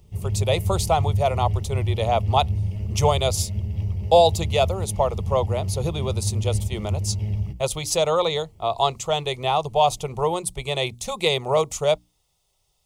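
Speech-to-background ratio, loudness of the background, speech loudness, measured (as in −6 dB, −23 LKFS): 4.0 dB, −27.5 LKFS, −23.5 LKFS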